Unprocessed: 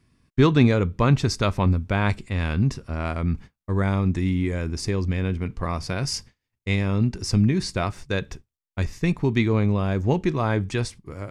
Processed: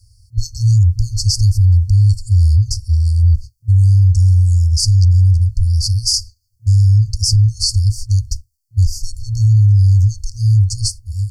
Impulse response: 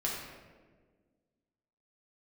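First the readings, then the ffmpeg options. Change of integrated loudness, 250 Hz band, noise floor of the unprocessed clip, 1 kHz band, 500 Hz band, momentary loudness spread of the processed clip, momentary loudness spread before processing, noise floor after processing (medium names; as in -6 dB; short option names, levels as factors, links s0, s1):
+10.0 dB, under -10 dB, -84 dBFS, under -40 dB, under -35 dB, 10 LU, 9 LU, -61 dBFS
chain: -af "afftfilt=real='re*(1-between(b*sr/4096,110,4300))':imag='im*(1-between(b*sr/4096,110,4300))':win_size=4096:overlap=0.75,alimiter=level_in=12.6:limit=0.891:release=50:level=0:latency=1,volume=0.596"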